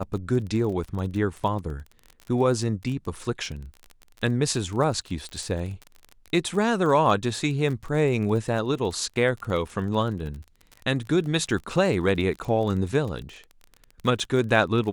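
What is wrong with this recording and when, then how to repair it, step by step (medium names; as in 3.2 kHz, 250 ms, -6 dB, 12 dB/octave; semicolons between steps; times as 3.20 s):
crackle 33 per s -32 dBFS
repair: de-click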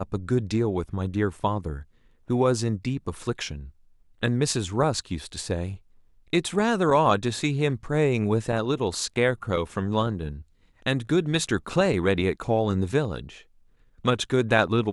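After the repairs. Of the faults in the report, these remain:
nothing left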